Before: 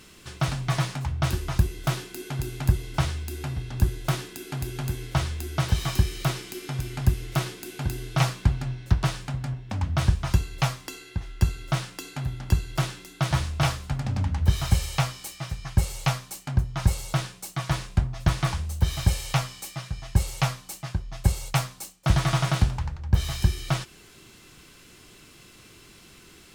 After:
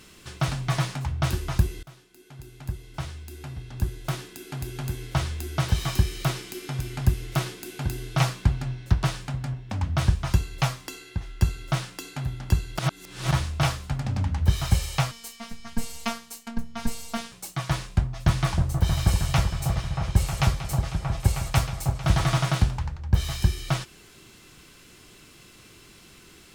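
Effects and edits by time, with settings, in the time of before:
1.83–5.42 fade in, from -24 dB
12.79–13.31 reverse
15.11–17.32 robotiser 231 Hz
17.96–22.38 repeats that get brighter 0.315 s, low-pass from 750 Hz, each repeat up 1 oct, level -3 dB

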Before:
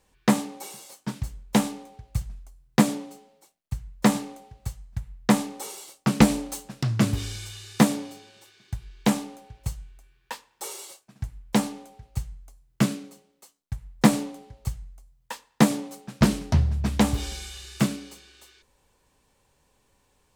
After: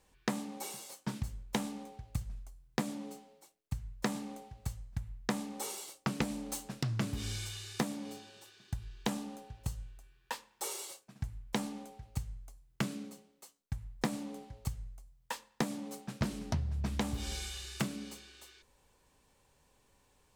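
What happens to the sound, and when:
8.13–10.33 notch 2200 Hz
whole clip: de-hum 106.7 Hz, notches 5; compressor 5:1, threshold -29 dBFS; gain -2.5 dB

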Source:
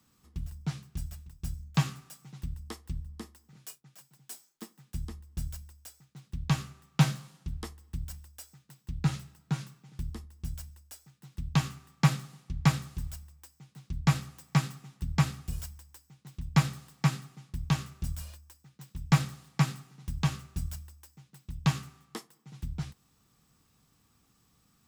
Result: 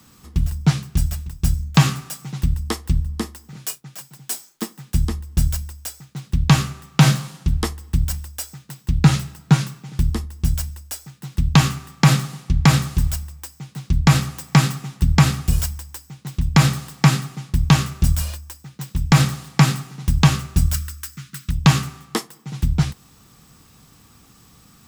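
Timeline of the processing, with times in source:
20.74–21.51 EQ curve 280 Hz 0 dB, 690 Hz -22 dB, 1300 Hz +9 dB, 2500 Hz +5 dB
whole clip: maximiser +18.5 dB; gain -1 dB

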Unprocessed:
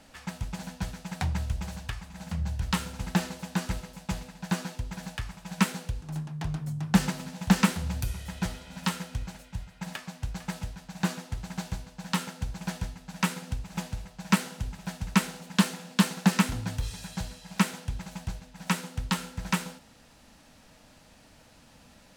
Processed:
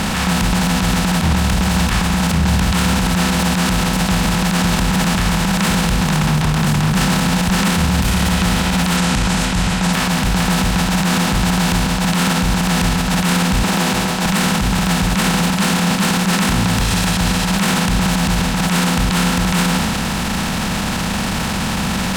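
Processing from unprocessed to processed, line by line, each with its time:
3.72–4.6 echo throw 0.53 s, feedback 70%, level -5 dB
8.97–9.93 synth low-pass 7800 Hz, resonance Q 2
13.63–14.26 resonant high-pass 340 Hz, resonance Q 2.6
whole clip: per-bin compression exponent 0.4; transient shaper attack -10 dB, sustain +4 dB; maximiser +19 dB; gain -6 dB

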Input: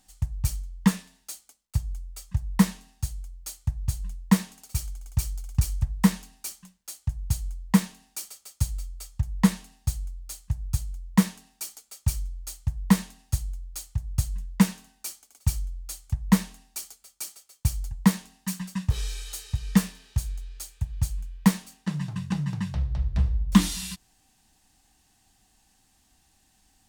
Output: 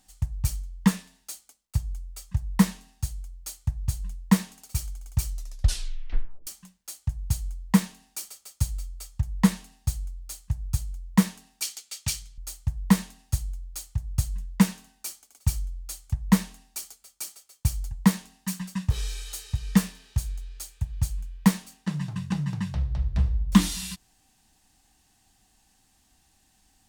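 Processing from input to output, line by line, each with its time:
5.27 tape stop 1.20 s
11.62–12.38 weighting filter D

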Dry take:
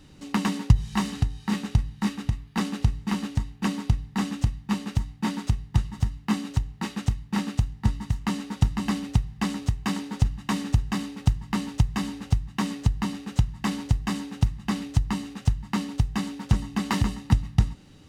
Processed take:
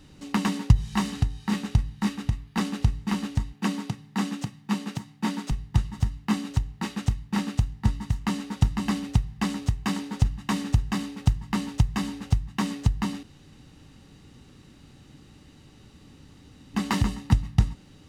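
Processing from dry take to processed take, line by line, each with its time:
3.53–5.51 HPF 150 Hz 24 dB/oct
13.23–16.74 room tone

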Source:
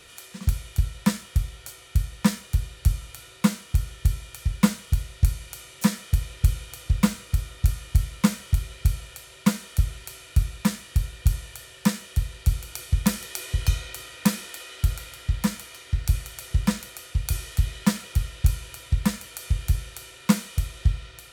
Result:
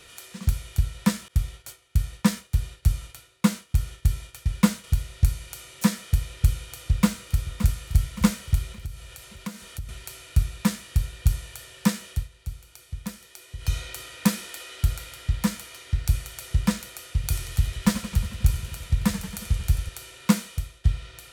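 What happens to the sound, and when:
1.28–4.84 expander -40 dBFS
6.69–7.73 echo throw 0.57 s, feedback 45%, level -11.5 dB
8.72–9.89 compressor 2:1, threshold -40 dBFS
12.09–13.78 dip -12.5 dB, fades 0.20 s
17.05–19.89 warbling echo 90 ms, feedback 71%, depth 137 cents, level -12.5 dB
20.39–20.84 fade out, to -16 dB

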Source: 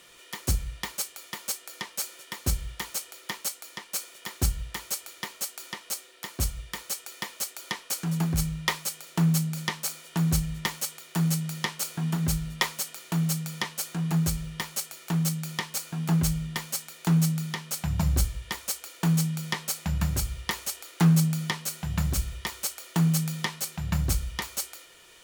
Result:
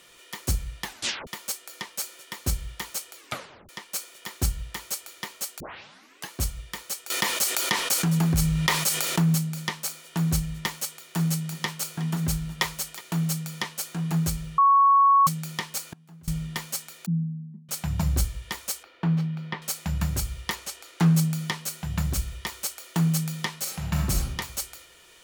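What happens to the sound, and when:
0.83 tape stop 0.44 s
3.16 tape stop 0.53 s
5.6 tape start 0.72 s
7.1–9.35 fast leveller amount 70%
10.77–13.01 echo 0.366 s -17.5 dB
14.58–15.27 bleep 1110 Hz -14 dBFS
15.83–16.28 flipped gate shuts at -26 dBFS, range -25 dB
17.06–17.69 Butterworth band-pass 200 Hz, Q 2.9
18.83–19.62 air absorption 340 m
20.55–21.15 high shelf 9800 Hz -9.5 dB
23.61–24.29 reverb throw, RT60 0.8 s, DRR 0 dB

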